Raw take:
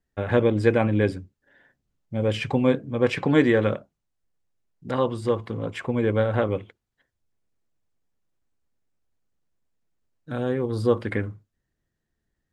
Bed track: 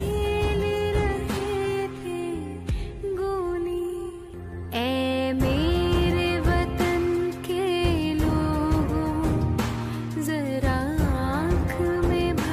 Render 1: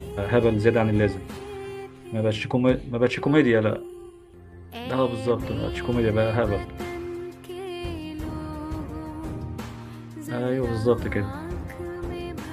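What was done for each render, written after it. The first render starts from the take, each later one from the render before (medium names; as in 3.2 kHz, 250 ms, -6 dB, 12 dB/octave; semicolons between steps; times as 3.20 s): add bed track -9.5 dB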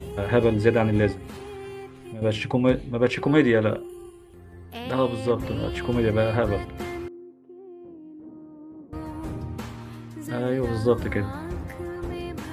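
1.12–2.22 s: compression 3:1, threshold -34 dBFS; 3.89–4.64 s: treble shelf 7.2 kHz +7 dB; 7.08–8.93 s: ladder band-pass 330 Hz, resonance 35%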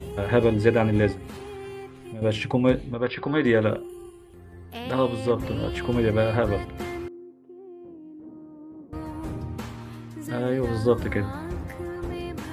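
2.94–3.45 s: rippled Chebyshev low-pass 5 kHz, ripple 6 dB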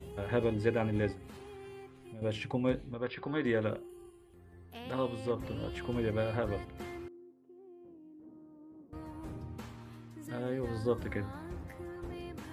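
trim -10.5 dB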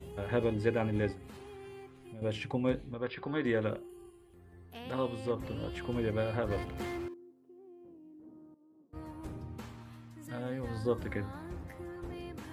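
6.50–7.14 s: power-law waveshaper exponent 0.7; 8.54–9.27 s: three bands expanded up and down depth 100%; 9.82–10.85 s: peaking EQ 380 Hz -12.5 dB 0.32 oct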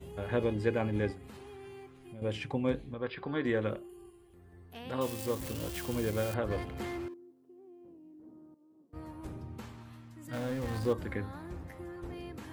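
5.01–6.34 s: zero-crossing glitches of -30.5 dBFS; 10.33–10.93 s: jump at every zero crossing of -38.5 dBFS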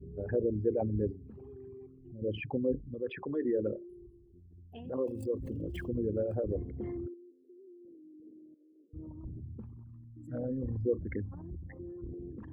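resonances exaggerated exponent 3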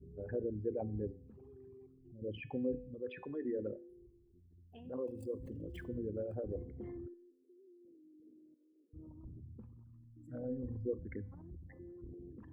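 feedback comb 250 Hz, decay 0.64 s, harmonics all, mix 60%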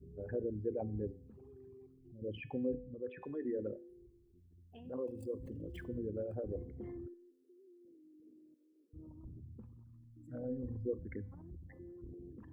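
2.74–3.22 s: low-pass 1.9 kHz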